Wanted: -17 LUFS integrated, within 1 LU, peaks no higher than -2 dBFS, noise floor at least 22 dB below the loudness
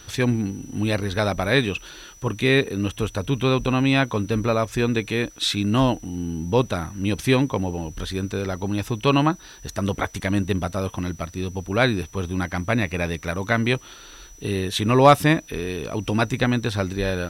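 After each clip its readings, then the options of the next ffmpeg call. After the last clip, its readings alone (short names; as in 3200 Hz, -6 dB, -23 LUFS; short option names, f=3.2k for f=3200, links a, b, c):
steady tone 5900 Hz; tone level -47 dBFS; loudness -23.0 LUFS; peak -3.5 dBFS; loudness target -17.0 LUFS
-> -af "bandreject=f=5.9k:w=30"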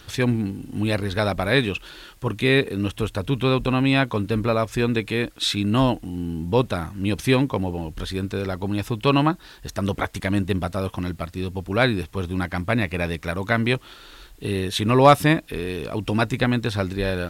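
steady tone none; loudness -23.0 LUFS; peak -3.5 dBFS; loudness target -17.0 LUFS
-> -af "volume=6dB,alimiter=limit=-2dB:level=0:latency=1"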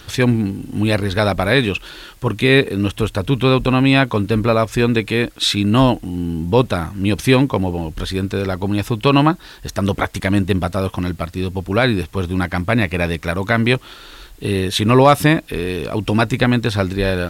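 loudness -17.5 LUFS; peak -2.0 dBFS; noise floor -41 dBFS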